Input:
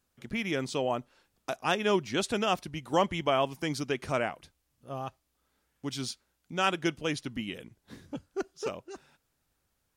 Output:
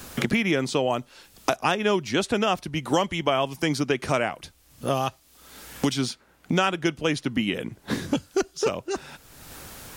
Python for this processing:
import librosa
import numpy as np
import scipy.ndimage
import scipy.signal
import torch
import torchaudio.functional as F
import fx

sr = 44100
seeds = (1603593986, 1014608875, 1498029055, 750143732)

y = fx.band_squash(x, sr, depth_pct=100)
y = y * librosa.db_to_amplitude(6.0)